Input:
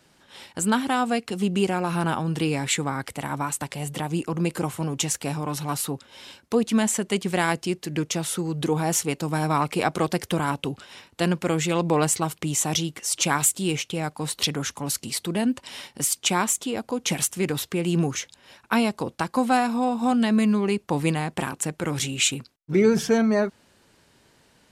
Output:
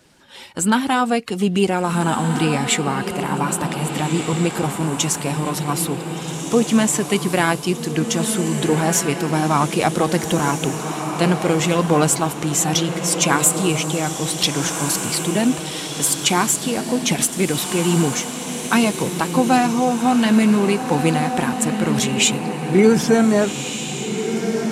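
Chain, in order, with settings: coarse spectral quantiser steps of 15 dB; echo that smears into a reverb 1583 ms, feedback 44%, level -6.5 dB; trim +5.5 dB

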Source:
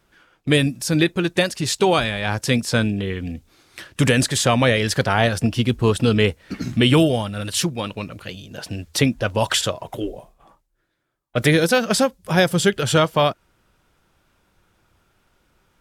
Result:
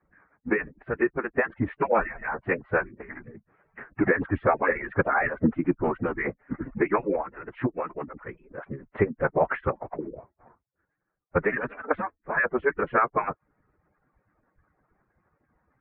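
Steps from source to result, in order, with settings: harmonic-percussive separation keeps percussive; steep low-pass 2.1 kHz 48 dB/octave; formant-preserving pitch shift -6 st

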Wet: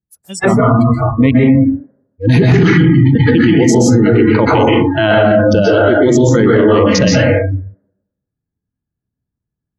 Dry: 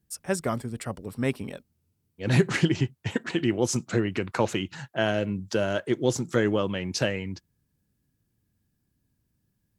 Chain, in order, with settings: local Wiener filter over 15 samples; dynamic bell 240 Hz, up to +5 dB, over -35 dBFS, Q 1; plate-style reverb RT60 0.97 s, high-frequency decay 0.3×, pre-delay 115 ms, DRR -5.5 dB; spectral noise reduction 30 dB; 3.89–6.24 s: treble shelf 11 kHz -7.5 dB; loudness maximiser +19.5 dB; trim -1 dB

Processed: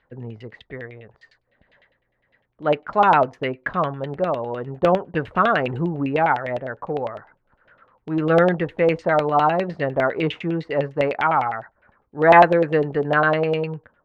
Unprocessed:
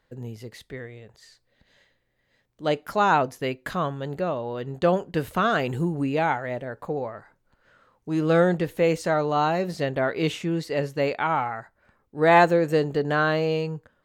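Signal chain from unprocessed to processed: LFO low-pass saw down 9.9 Hz 620–3100 Hz; Chebyshev shaper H 3 -43 dB, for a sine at -2.5 dBFS; trim +1.5 dB

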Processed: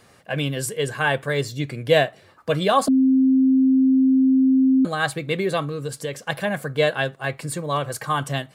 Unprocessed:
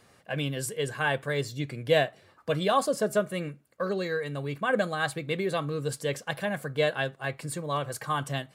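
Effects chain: 2.88–4.85 s: bleep 263 Hz -19 dBFS; 5.63–6.23 s: compression 5:1, threshold -31 dBFS, peak gain reduction 7 dB; trim +6 dB

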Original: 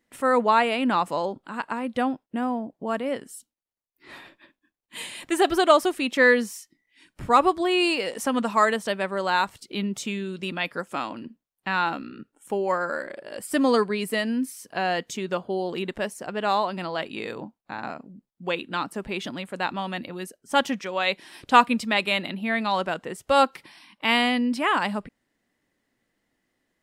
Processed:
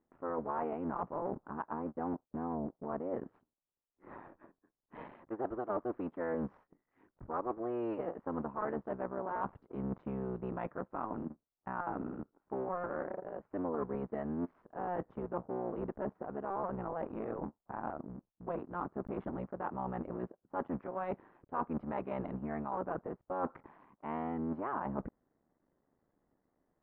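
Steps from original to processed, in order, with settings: cycle switcher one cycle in 3, muted; low-pass 1.2 kHz 24 dB/octave; reverse; compression 5:1, threshold -36 dBFS, peak gain reduction 20.5 dB; reverse; trim +1 dB

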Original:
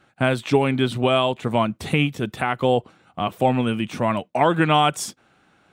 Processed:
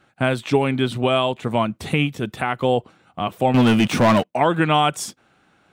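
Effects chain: 3.54–4.34 s: waveshaping leveller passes 3

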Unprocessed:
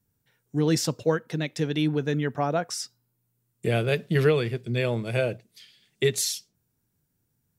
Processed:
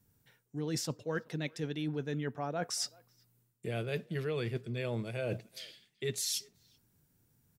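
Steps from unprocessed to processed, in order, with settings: reverse; compression 10:1, threshold -36 dBFS, peak gain reduction 20 dB; reverse; speakerphone echo 380 ms, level -25 dB; trim +3.5 dB

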